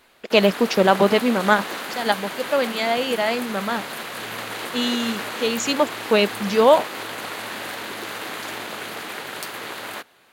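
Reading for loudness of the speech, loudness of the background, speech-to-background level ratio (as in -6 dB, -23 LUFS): -20.5 LUFS, -30.5 LUFS, 10.0 dB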